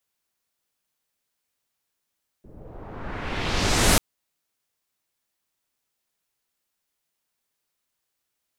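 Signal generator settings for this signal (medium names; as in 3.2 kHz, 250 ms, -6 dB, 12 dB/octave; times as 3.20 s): swept filtered noise pink, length 1.54 s lowpass, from 340 Hz, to 12 kHz, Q 1.2, exponential, gain ramp +28.5 dB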